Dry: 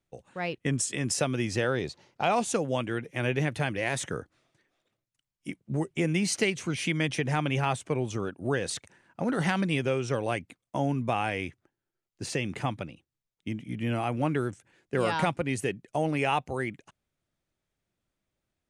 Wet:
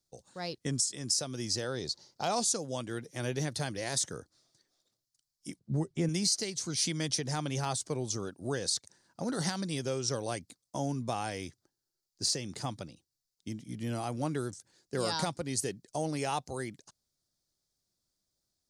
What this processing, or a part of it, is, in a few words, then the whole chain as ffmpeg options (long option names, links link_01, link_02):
over-bright horn tweeter: -filter_complex "[0:a]highshelf=frequency=3500:width_type=q:width=3:gain=10.5,alimiter=limit=-12dB:level=0:latency=1:release=463,asettb=1/sr,asplit=3[link_01][link_02][link_03];[link_01]atrim=end=5.594[link_04];[link_02]atrim=start=5.59:end=6.09,asetpts=PTS-STARTPTS,afade=type=in:duration=0.004:curve=qsin,afade=type=out:start_time=0.496:duration=0.004:curve=qsin,bass=frequency=250:gain=6,treble=frequency=4000:gain=-11[link_05];[link_03]atrim=start=6.086[link_06];[link_04][link_05]acrossfade=duration=0.004:curve1=hsin:curve2=qsin[link_07];[link_07][link_06]acrossfade=duration=0.004:curve1=qsin:curve2=hsin,volume=-5.5dB"